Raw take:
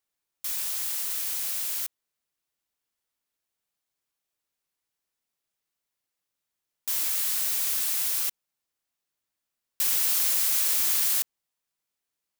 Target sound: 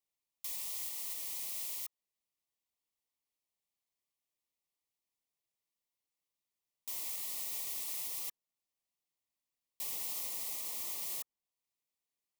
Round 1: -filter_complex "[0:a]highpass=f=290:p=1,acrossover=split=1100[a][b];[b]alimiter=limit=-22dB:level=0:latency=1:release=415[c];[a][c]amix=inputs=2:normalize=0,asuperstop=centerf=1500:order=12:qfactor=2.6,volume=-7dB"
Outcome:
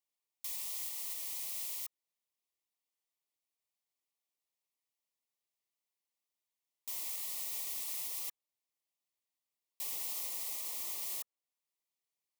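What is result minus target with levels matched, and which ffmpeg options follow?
250 Hz band -3.5 dB
-filter_complex "[0:a]acrossover=split=1100[a][b];[b]alimiter=limit=-22dB:level=0:latency=1:release=415[c];[a][c]amix=inputs=2:normalize=0,asuperstop=centerf=1500:order=12:qfactor=2.6,volume=-7dB"

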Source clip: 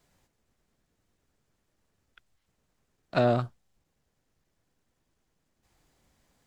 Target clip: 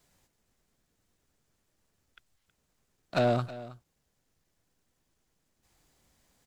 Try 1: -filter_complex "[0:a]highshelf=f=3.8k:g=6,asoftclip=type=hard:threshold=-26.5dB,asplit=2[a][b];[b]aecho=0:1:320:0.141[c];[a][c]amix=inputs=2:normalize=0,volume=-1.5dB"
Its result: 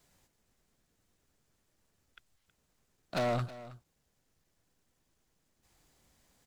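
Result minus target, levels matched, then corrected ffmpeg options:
hard clip: distortion +11 dB
-filter_complex "[0:a]highshelf=f=3.8k:g=6,asoftclip=type=hard:threshold=-16.5dB,asplit=2[a][b];[b]aecho=0:1:320:0.141[c];[a][c]amix=inputs=2:normalize=0,volume=-1.5dB"

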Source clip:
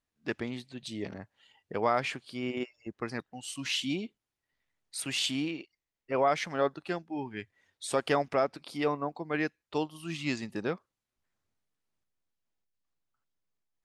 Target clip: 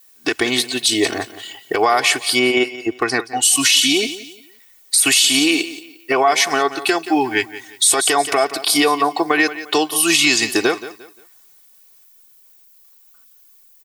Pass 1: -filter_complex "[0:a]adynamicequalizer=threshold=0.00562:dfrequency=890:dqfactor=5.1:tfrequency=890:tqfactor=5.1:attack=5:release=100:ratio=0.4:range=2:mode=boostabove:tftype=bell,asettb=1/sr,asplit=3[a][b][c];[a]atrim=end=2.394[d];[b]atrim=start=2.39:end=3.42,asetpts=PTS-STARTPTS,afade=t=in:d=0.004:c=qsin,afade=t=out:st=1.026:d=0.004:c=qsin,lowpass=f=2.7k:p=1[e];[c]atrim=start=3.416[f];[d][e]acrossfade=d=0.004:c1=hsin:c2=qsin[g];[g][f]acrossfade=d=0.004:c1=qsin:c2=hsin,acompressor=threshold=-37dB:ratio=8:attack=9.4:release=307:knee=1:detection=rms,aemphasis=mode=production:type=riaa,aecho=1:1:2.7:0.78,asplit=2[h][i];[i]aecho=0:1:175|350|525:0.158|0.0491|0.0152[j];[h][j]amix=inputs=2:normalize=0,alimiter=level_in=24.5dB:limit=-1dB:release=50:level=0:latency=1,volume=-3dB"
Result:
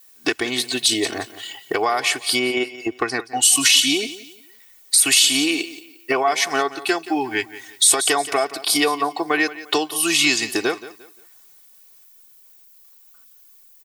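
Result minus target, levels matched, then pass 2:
compressor: peak gain reduction +5.5 dB
-filter_complex "[0:a]adynamicequalizer=threshold=0.00562:dfrequency=890:dqfactor=5.1:tfrequency=890:tqfactor=5.1:attack=5:release=100:ratio=0.4:range=2:mode=boostabove:tftype=bell,asettb=1/sr,asplit=3[a][b][c];[a]atrim=end=2.394[d];[b]atrim=start=2.39:end=3.42,asetpts=PTS-STARTPTS,afade=t=in:d=0.004:c=qsin,afade=t=out:st=1.026:d=0.004:c=qsin,lowpass=f=2.7k:p=1[e];[c]atrim=start=3.416[f];[d][e]acrossfade=d=0.004:c1=hsin:c2=qsin[g];[g][f]acrossfade=d=0.004:c1=qsin:c2=hsin,acompressor=threshold=-30.5dB:ratio=8:attack=9.4:release=307:knee=1:detection=rms,aemphasis=mode=production:type=riaa,aecho=1:1:2.7:0.78,asplit=2[h][i];[i]aecho=0:1:175|350|525:0.158|0.0491|0.0152[j];[h][j]amix=inputs=2:normalize=0,alimiter=level_in=24.5dB:limit=-1dB:release=50:level=0:latency=1,volume=-3dB"

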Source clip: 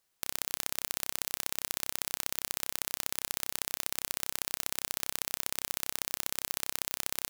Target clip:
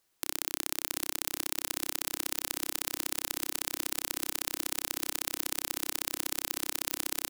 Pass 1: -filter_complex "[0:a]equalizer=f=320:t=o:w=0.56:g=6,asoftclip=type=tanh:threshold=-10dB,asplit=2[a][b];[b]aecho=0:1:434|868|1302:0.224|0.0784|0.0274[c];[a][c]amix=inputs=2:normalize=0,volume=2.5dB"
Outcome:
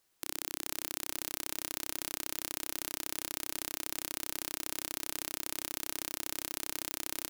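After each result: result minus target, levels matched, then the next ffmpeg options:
soft clip: distortion +12 dB; echo 0.239 s early
-filter_complex "[0:a]equalizer=f=320:t=o:w=0.56:g=6,asoftclip=type=tanh:threshold=-1.5dB,asplit=2[a][b];[b]aecho=0:1:434|868|1302:0.224|0.0784|0.0274[c];[a][c]amix=inputs=2:normalize=0,volume=2.5dB"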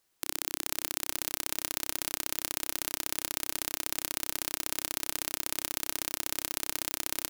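echo 0.239 s early
-filter_complex "[0:a]equalizer=f=320:t=o:w=0.56:g=6,asoftclip=type=tanh:threshold=-1.5dB,asplit=2[a][b];[b]aecho=0:1:673|1346|2019:0.224|0.0784|0.0274[c];[a][c]amix=inputs=2:normalize=0,volume=2.5dB"

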